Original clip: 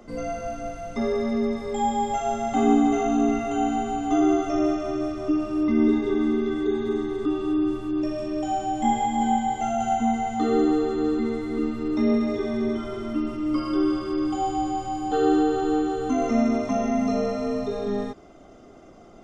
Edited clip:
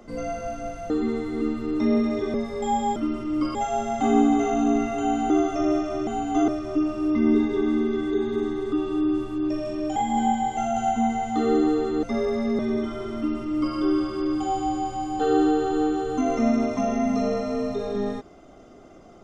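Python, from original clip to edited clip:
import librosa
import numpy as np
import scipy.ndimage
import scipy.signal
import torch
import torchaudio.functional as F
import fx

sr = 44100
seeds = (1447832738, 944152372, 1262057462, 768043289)

y = fx.edit(x, sr, fx.swap(start_s=0.9, length_s=0.56, other_s=11.07, other_length_s=1.44),
    fx.move(start_s=3.83, length_s=0.41, to_s=5.01),
    fx.cut(start_s=8.49, length_s=0.51),
    fx.duplicate(start_s=13.09, length_s=0.59, to_s=2.08), tone=tone)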